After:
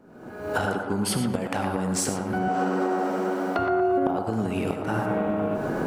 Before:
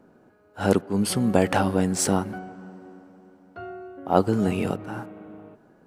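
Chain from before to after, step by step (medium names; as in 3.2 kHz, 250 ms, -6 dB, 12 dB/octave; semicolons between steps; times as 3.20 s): recorder AGC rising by 57 dB/s; 2.48–3.59 s: high-pass 340 Hz 12 dB/octave; compression 10:1, threshold -23 dBFS, peak gain reduction 17 dB; on a send: band-passed feedback delay 117 ms, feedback 60%, band-pass 1 kHz, level -3.5 dB; on the sum: gated-style reverb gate 120 ms rising, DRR 8.5 dB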